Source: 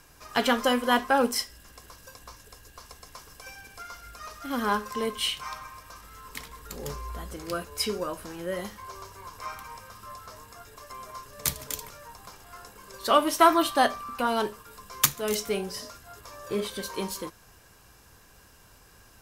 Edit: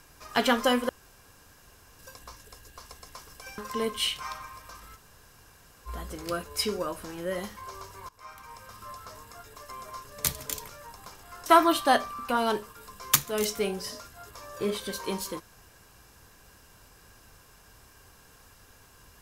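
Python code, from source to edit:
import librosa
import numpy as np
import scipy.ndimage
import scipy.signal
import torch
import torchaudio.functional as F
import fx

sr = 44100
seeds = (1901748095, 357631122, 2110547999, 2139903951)

y = fx.edit(x, sr, fx.room_tone_fill(start_s=0.89, length_s=1.1),
    fx.cut(start_s=3.58, length_s=1.21),
    fx.room_tone_fill(start_s=6.17, length_s=0.91, crossfade_s=0.04),
    fx.fade_in_from(start_s=9.3, length_s=0.67, floor_db=-19.0),
    fx.cut(start_s=12.67, length_s=0.69), tone=tone)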